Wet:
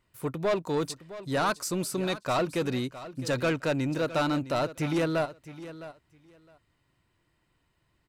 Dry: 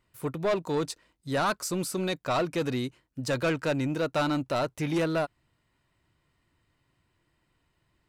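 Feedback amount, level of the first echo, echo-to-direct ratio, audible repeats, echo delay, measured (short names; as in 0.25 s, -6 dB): 16%, -15.0 dB, -15.0 dB, 2, 0.661 s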